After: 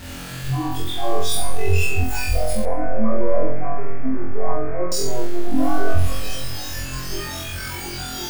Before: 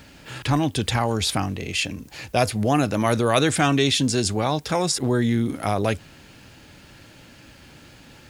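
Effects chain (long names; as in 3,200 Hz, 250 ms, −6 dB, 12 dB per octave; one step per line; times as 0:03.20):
sign of each sample alone
low-shelf EQ 86 Hz +11 dB
tuned comb filter 65 Hz, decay 1.9 s, harmonics all, mix 60%
flutter between parallel walls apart 3.9 metres, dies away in 1.1 s
noise reduction from a noise print of the clip's start 15 dB
0:02.65–0:04.92: Butterworth low-pass 2,400 Hz 96 dB per octave
dense smooth reverb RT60 2.3 s, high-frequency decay 0.35×, DRR 12.5 dB
level +5 dB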